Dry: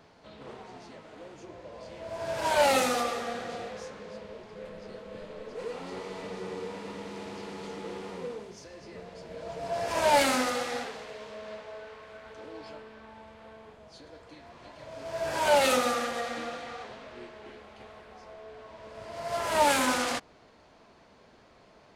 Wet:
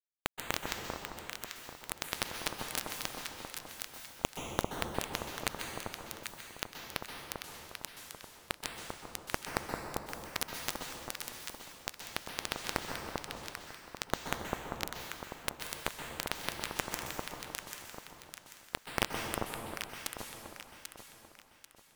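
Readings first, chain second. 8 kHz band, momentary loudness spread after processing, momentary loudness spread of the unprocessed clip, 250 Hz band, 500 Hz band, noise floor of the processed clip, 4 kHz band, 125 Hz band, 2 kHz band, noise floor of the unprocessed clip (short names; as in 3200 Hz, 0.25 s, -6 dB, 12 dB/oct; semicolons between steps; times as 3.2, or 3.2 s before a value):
-2.5 dB, 11 LU, 24 LU, -7.5 dB, -13.0 dB, -59 dBFS, -3.5 dB, +1.0 dB, -5.5 dB, -58 dBFS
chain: steep low-pass 5900 Hz 36 dB/oct; low shelf 180 Hz +7.5 dB; notch 3900 Hz, Q 11; reverse; compressor 12:1, threshold -39 dBFS, peak gain reduction 22 dB; reverse; rotary speaker horn 6.7 Hz; added harmonics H 4 -37 dB, 6 -44 dB, 8 -8 dB, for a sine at -29.5 dBFS; bit-crush 5-bit; echo with dull and thin repeats by turns 0.395 s, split 1200 Hz, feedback 59%, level -2 dB; plate-style reverb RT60 1.9 s, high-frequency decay 0.85×, pre-delay 0.115 s, DRR 3 dB; gain +12.5 dB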